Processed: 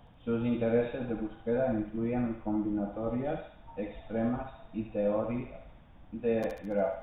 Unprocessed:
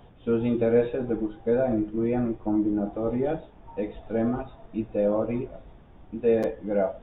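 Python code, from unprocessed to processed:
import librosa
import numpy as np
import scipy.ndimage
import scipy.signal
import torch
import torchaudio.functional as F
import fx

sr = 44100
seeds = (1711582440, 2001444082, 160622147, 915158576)

y = fx.peak_eq(x, sr, hz=390.0, db=-12.0, octaves=0.35)
y = fx.echo_thinned(y, sr, ms=71, feedback_pct=59, hz=940.0, wet_db=-3)
y = y * 10.0 ** (-4.0 / 20.0)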